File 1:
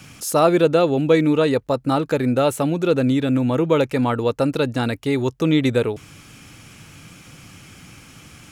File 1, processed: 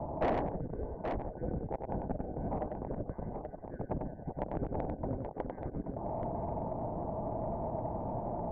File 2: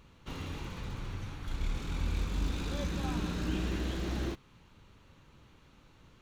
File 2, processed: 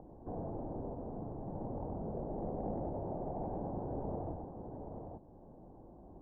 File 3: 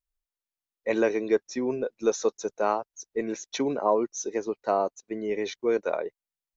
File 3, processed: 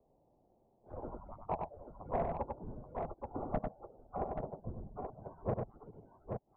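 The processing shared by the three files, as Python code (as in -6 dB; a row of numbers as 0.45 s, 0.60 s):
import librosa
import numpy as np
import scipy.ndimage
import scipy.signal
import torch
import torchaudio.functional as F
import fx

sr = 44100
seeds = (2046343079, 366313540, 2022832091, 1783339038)

p1 = fx.band_shuffle(x, sr, order='4321')
p2 = scipy.signal.sosfilt(scipy.signal.butter(8, 810.0, 'lowpass', fs=sr, output='sos'), p1)
p3 = fx.rider(p2, sr, range_db=5, speed_s=2.0)
p4 = p2 + F.gain(torch.from_numpy(p3), -2.0).numpy()
p5 = 10.0 ** (-39.0 / 20.0) * np.tanh(p4 / 10.0 ** (-39.0 / 20.0))
p6 = p5 + fx.echo_multitap(p5, sr, ms=(96, 829), db=(-4.5, -8.0), dry=0)
p7 = fx.band_squash(p6, sr, depth_pct=40)
y = F.gain(torch.from_numpy(p7), 15.5).numpy()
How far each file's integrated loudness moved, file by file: -19.0 LU, -5.0 LU, -14.0 LU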